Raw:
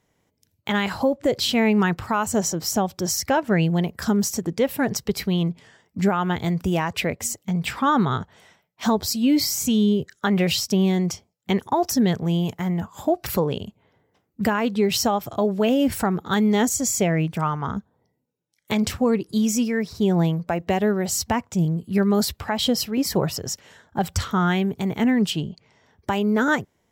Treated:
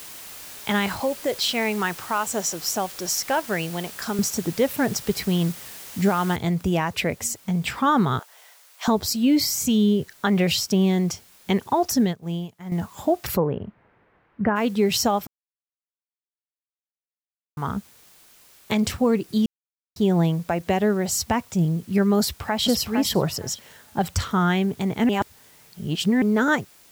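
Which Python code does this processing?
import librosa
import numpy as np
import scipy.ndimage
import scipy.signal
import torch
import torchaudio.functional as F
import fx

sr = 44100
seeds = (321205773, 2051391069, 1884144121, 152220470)

y = fx.highpass(x, sr, hz=590.0, slope=6, at=(1.0, 4.19))
y = fx.noise_floor_step(y, sr, seeds[0], at_s=6.36, before_db=-40, after_db=-53, tilt_db=0.0)
y = fx.highpass(y, sr, hz=550.0, slope=24, at=(8.19, 8.88))
y = fx.upward_expand(y, sr, threshold_db=-29.0, expansion=2.5, at=(12.0, 12.72))
y = fx.lowpass(y, sr, hz=1900.0, slope=24, at=(13.36, 14.55), fade=0.02)
y = fx.echo_throw(y, sr, start_s=22.2, length_s=0.47, ms=460, feedback_pct=15, wet_db=-5.0)
y = fx.edit(y, sr, fx.silence(start_s=15.27, length_s=2.3),
    fx.silence(start_s=19.46, length_s=0.5),
    fx.reverse_span(start_s=25.09, length_s=1.13), tone=tone)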